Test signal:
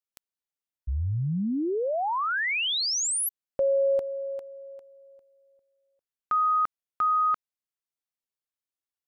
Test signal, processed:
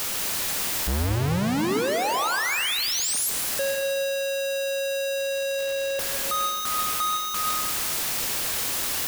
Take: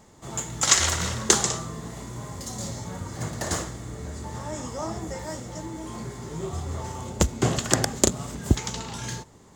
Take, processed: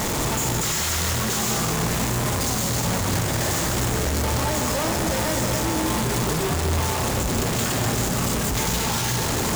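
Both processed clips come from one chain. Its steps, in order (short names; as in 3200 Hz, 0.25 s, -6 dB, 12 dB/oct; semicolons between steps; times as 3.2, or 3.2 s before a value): infinite clipping; in parallel at +1 dB: vocal rider; on the sum: plate-style reverb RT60 1.5 s, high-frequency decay 0.9×, pre-delay 0.115 s, DRR 4.5 dB; gain -2.5 dB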